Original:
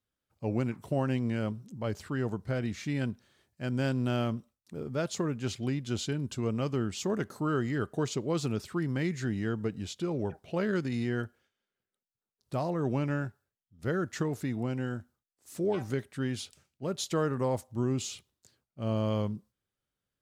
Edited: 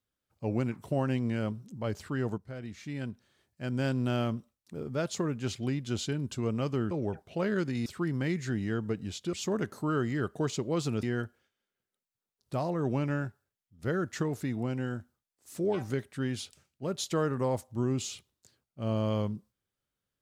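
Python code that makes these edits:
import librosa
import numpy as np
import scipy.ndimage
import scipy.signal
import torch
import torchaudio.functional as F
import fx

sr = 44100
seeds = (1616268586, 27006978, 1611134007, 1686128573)

y = fx.edit(x, sr, fx.fade_in_from(start_s=2.38, length_s=1.55, floor_db=-12.0),
    fx.swap(start_s=6.91, length_s=1.7, other_s=10.08, other_length_s=0.95), tone=tone)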